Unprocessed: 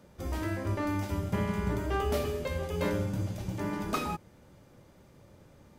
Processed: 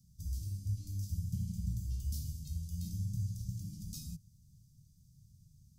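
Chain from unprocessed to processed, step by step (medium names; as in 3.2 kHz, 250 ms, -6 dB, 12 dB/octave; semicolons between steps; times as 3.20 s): elliptic band-stop 150–5300 Hz, stop band 50 dB; trim -1.5 dB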